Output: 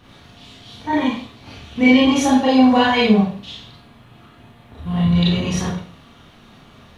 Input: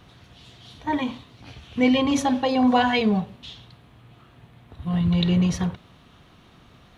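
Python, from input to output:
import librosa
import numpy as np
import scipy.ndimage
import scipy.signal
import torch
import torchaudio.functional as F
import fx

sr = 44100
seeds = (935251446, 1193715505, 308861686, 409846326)

y = fx.rev_schroeder(x, sr, rt60_s=0.41, comb_ms=27, drr_db=-5.5)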